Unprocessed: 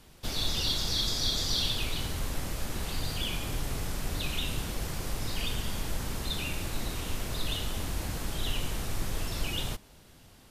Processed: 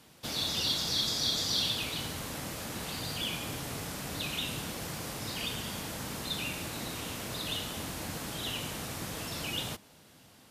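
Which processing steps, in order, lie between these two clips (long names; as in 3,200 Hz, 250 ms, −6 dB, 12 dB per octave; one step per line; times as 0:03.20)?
high-pass filter 130 Hz 12 dB per octave
notch filter 380 Hz, Q 12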